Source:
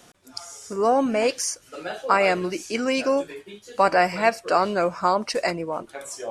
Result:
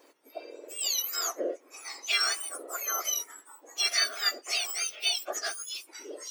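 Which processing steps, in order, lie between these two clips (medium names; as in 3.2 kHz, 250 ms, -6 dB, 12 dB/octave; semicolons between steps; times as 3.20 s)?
spectrum inverted on a logarithmic axis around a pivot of 1.8 kHz; bass shelf 490 Hz -12 dB; trim -3.5 dB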